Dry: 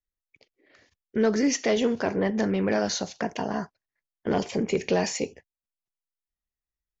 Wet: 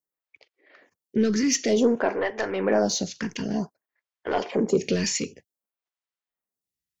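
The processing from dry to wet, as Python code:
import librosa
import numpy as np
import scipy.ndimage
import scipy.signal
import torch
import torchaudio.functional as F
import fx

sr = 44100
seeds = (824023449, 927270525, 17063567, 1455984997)

y = scipy.signal.sosfilt(scipy.signal.butter(2, 110.0, 'highpass', fs=sr, output='sos'), x)
y = 10.0 ** (-15.5 / 20.0) * np.tanh(y / 10.0 ** (-15.5 / 20.0))
y = fx.stagger_phaser(y, sr, hz=0.54)
y = y * 10.0 ** (6.0 / 20.0)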